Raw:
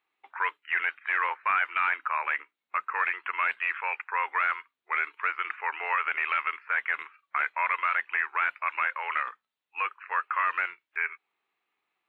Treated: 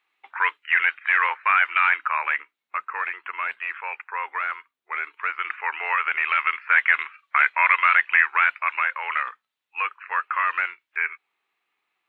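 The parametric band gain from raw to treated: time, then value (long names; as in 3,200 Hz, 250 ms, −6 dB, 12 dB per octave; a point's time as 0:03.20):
parametric band 2,600 Hz 3 octaves
0:01.97 +8.5 dB
0:03.09 −1 dB
0:04.97 −1 dB
0:05.56 +5.5 dB
0:06.26 +5.5 dB
0:06.68 +11.5 dB
0:08.22 +11.5 dB
0:08.88 +5 dB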